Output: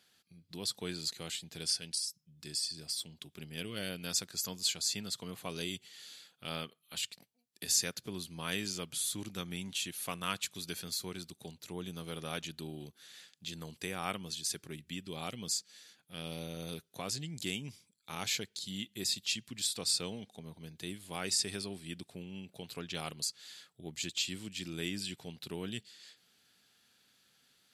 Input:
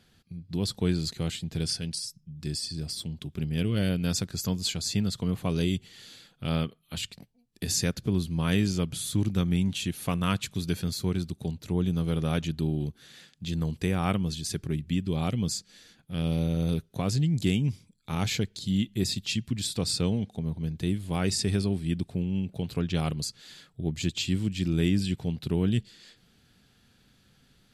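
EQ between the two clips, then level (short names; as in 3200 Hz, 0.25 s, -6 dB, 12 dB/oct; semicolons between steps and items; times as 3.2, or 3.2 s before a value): HPF 740 Hz 6 dB/oct; high shelf 4300 Hz +5.5 dB; -4.5 dB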